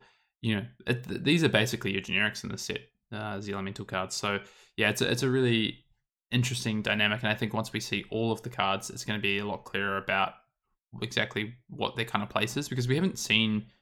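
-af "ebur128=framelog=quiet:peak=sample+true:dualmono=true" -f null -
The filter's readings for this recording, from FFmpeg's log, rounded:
Integrated loudness:
  I:         -26.3 LUFS
  Threshold: -36.5 LUFS
Loudness range:
  LRA:         3.1 LU
  Threshold: -47.0 LUFS
  LRA low:   -28.5 LUFS
  LRA high:  -25.3 LUFS
Sample peak:
  Peak:       -8.0 dBFS
True peak:
  Peak:       -7.9 dBFS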